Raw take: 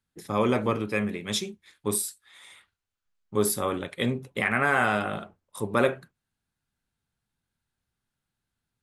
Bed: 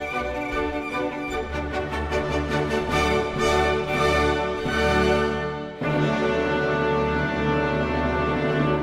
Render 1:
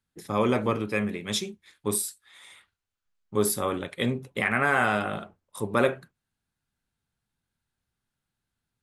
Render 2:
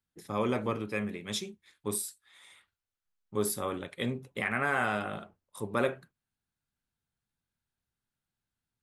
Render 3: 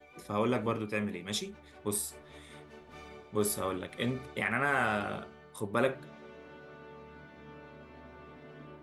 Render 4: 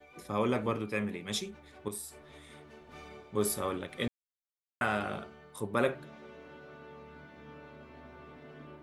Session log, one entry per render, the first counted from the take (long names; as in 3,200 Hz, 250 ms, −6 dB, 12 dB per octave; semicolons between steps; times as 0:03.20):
no processing that can be heard
level −6 dB
mix in bed −28 dB
0:01.88–0:02.87: downward compressor 1.5 to 1, threshold −50 dBFS; 0:04.08–0:04.81: silence